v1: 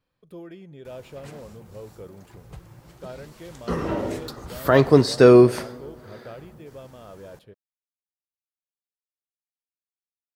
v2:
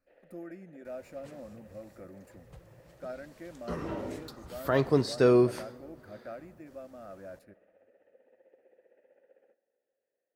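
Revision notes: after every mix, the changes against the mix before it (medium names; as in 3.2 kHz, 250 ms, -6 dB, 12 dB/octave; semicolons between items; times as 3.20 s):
speech: add static phaser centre 650 Hz, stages 8; first sound: unmuted; second sound -10.0 dB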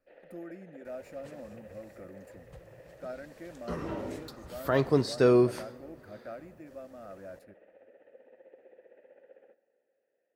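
first sound +7.0 dB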